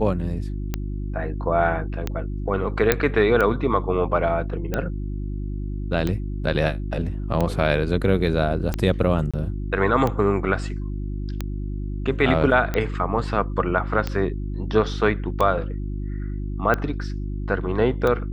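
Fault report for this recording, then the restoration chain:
mains hum 50 Hz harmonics 7 −28 dBFS
scratch tick 45 rpm −11 dBFS
0:02.92: click −2 dBFS
0:09.31–0:09.34: drop-out 26 ms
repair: click removal
hum removal 50 Hz, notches 7
repair the gap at 0:09.31, 26 ms

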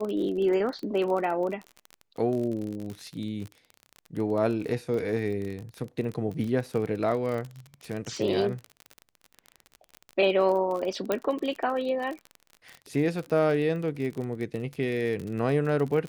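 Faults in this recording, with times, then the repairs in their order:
surface crackle 33 per second −32 dBFS
0:11.12: click −12 dBFS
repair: click removal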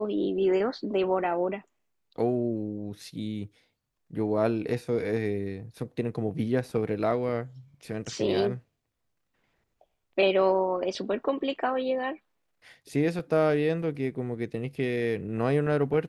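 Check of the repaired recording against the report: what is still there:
none of them is left

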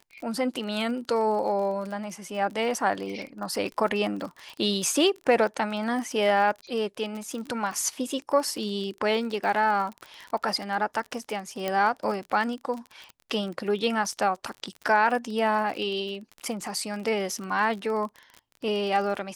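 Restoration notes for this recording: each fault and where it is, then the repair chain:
surface crackle 31 per second −32 dBFS
0:11.68: click −14 dBFS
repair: click removal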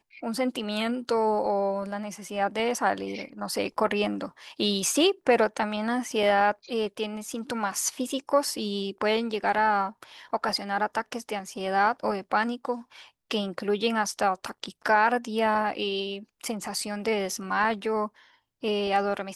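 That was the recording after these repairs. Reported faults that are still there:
none of them is left

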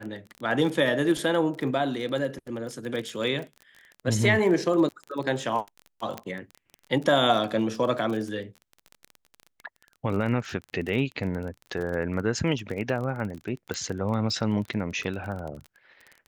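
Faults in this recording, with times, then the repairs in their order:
surface crackle 23 per second −32 dBFS
0:06.18: click −18 dBFS
0:13.74: click −16 dBFS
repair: click removal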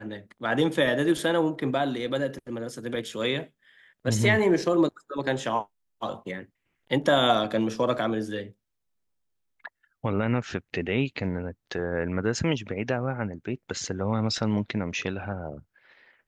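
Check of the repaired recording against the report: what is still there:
0:13.74: click

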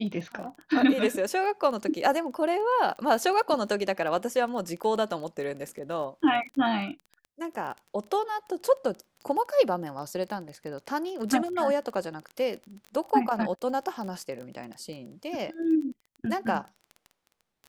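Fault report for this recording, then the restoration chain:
surface crackle 23 per second −35 dBFS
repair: click removal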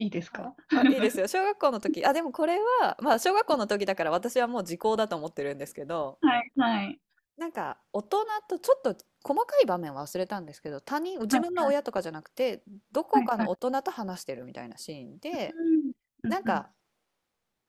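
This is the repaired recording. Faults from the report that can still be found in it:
none of them is left

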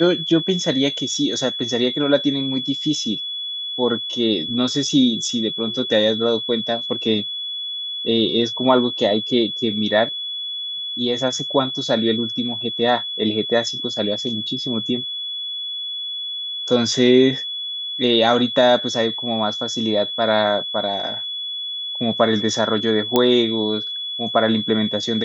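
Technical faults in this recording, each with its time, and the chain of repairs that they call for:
whistle 3,400 Hz −25 dBFS
0:23.16: click −3 dBFS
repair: click removal
notch filter 3,400 Hz, Q 30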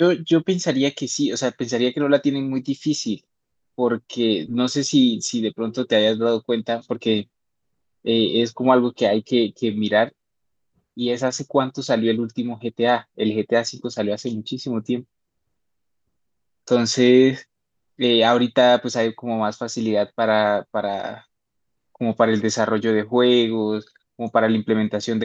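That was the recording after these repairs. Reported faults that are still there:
none of them is left

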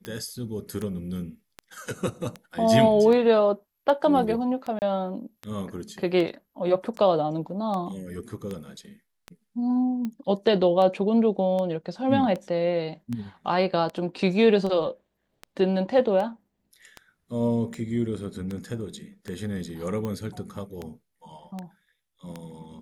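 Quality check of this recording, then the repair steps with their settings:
scratch tick 78 rpm −20 dBFS
0:04.79–0:04.82: drop-out 29 ms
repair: click removal
repair the gap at 0:04.79, 29 ms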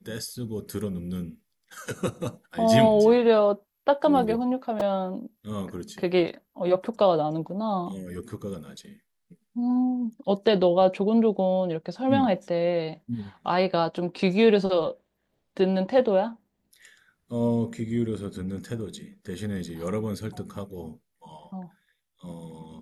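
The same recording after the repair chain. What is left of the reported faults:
none of them is left

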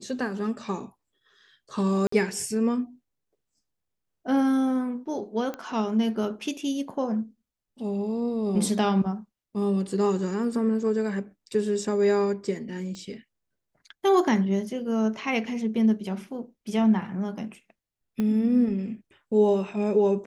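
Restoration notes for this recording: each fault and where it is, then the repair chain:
0:02.07–0:02.12: drop-out 54 ms
0:05.54: click −20 dBFS
0:12.95: click −28 dBFS
0:18.20: click −17 dBFS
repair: click removal
repair the gap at 0:02.07, 54 ms

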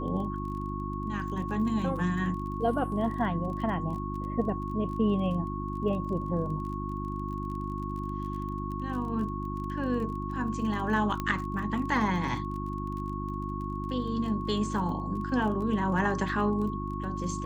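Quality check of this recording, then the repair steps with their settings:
surface crackle 25 per second −38 dBFS
mains hum 50 Hz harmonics 7 −35 dBFS
whistle 1,100 Hz −37 dBFS
0:11.20: click −18 dBFS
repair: click removal
notch filter 1,100 Hz, Q 30
hum removal 50 Hz, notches 7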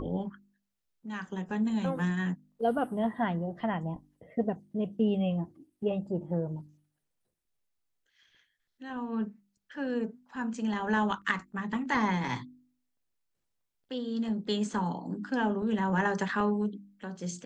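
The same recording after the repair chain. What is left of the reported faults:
none of them is left

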